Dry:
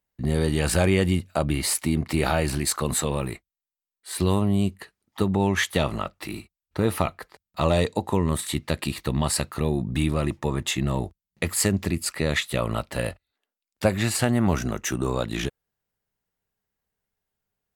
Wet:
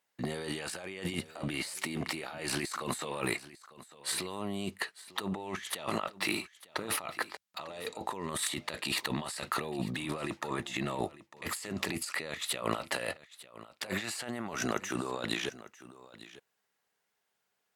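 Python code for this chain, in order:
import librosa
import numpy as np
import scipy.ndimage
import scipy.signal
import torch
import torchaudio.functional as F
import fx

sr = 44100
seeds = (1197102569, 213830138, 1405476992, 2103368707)

y = fx.weighting(x, sr, curve='A')
y = fx.over_compress(y, sr, threshold_db=-37.0, ratio=-1.0)
y = y + 10.0 ** (-17.5 / 20.0) * np.pad(y, (int(899 * sr / 1000.0), 0))[:len(y)]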